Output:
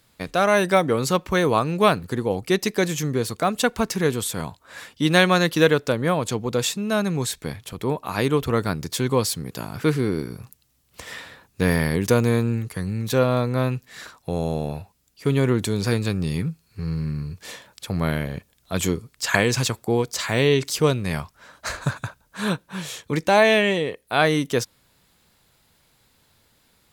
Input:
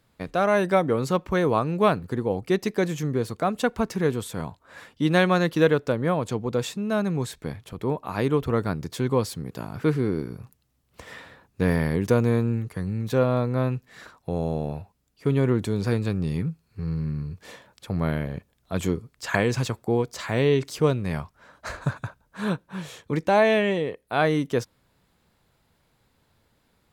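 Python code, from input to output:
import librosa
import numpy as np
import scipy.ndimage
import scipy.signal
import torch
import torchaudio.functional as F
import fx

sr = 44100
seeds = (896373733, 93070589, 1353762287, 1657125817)

y = fx.high_shelf(x, sr, hz=2300.0, db=10.5)
y = y * 10.0 ** (1.5 / 20.0)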